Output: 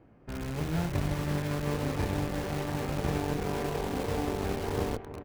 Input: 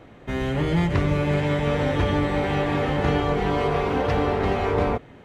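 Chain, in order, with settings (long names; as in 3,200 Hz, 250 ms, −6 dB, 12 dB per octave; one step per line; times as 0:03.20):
high-shelf EQ 3,700 Hz −9.5 dB
harmonic generator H 3 −32 dB, 6 −22 dB, 7 −23 dB, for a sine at −8.5 dBFS
parametric band 1,900 Hz −6.5 dB 0.27 octaves
on a send: single-tap delay 361 ms −14.5 dB
on the sum: formants moved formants −5 semitones
in parallel at −4.5 dB: wrap-around overflow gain 26 dB
on the sum: level −7.5 dB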